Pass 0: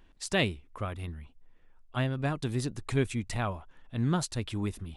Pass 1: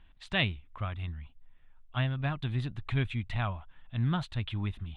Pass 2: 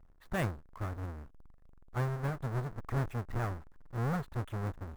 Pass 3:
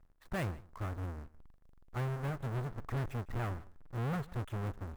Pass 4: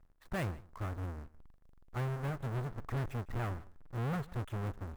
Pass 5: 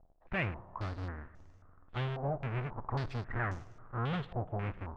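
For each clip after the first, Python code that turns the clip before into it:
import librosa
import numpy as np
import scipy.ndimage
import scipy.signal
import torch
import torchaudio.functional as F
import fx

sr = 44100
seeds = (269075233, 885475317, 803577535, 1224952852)

y1 = fx.curve_eq(x, sr, hz=(120.0, 460.0, 670.0, 3600.0, 5200.0, 9400.0), db=(0, -14, -5, 0, -22, -26))
y1 = y1 * 10.0 ** (2.0 / 20.0)
y2 = fx.halfwave_hold(y1, sr)
y2 = fx.high_shelf_res(y2, sr, hz=2100.0, db=-10.5, q=1.5)
y2 = y2 * 10.0 ** (-7.5 / 20.0)
y3 = fx.leveller(y2, sr, passes=2)
y3 = y3 + 10.0 ** (-21.5 / 20.0) * np.pad(y3, (int(155 * sr / 1000.0), 0))[:len(y3)]
y3 = y3 * 10.0 ** (-7.5 / 20.0)
y4 = y3
y5 = fx.rev_plate(y4, sr, seeds[0], rt60_s=3.2, hf_ratio=0.95, predelay_ms=0, drr_db=18.0)
y5 = fx.filter_held_lowpass(y5, sr, hz=3.7, low_hz=700.0, high_hz=6200.0)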